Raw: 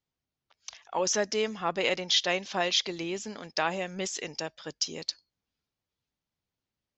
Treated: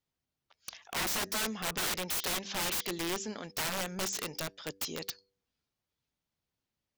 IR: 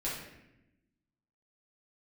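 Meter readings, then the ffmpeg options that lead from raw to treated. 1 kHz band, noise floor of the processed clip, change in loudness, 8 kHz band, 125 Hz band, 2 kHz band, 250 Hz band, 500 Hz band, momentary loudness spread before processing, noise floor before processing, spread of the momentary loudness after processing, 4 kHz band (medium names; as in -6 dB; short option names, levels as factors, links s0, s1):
-5.5 dB, under -85 dBFS, -4.0 dB, -1.5 dB, -1.5 dB, -3.5 dB, -3.0 dB, -9.5 dB, 12 LU, under -85 dBFS, 9 LU, -6.5 dB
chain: -af "aeval=exprs='(mod(23.7*val(0)+1,2)-1)/23.7':c=same,bandreject=f=97.59:t=h:w=4,bandreject=f=195.18:t=h:w=4,bandreject=f=292.77:t=h:w=4,bandreject=f=390.36:t=h:w=4,bandreject=f=487.95:t=h:w=4"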